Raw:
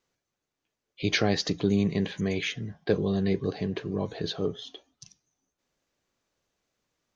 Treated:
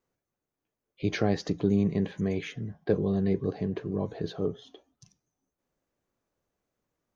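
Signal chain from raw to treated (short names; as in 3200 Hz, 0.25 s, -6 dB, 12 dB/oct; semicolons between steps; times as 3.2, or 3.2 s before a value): bell 4100 Hz -11.5 dB 2.5 oct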